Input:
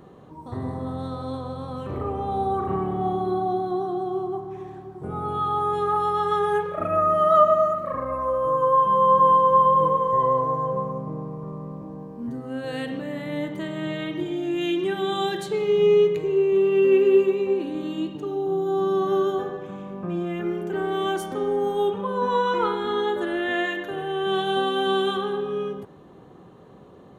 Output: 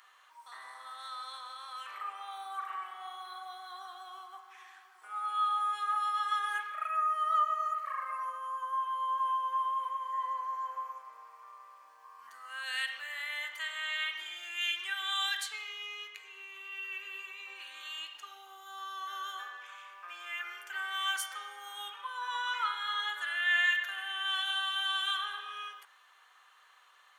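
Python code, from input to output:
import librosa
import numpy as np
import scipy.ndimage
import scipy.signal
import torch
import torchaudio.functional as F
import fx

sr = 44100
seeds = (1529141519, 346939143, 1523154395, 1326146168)

y = fx.peak_eq(x, sr, hz=1100.0, db=14.0, octaves=0.23, at=(12.04, 12.63))
y = fx.rider(y, sr, range_db=4, speed_s=0.5)
y = scipy.signal.sosfilt(scipy.signal.butter(4, 1400.0, 'highpass', fs=sr, output='sos'), y)
y = fx.notch(y, sr, hz=3800.0, q=16.0)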